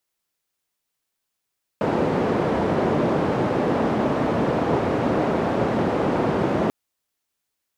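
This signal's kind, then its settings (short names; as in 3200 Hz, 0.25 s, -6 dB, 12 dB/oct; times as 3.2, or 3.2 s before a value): noise band 130–540 Hz, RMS -21.5 dBFS 4.89 s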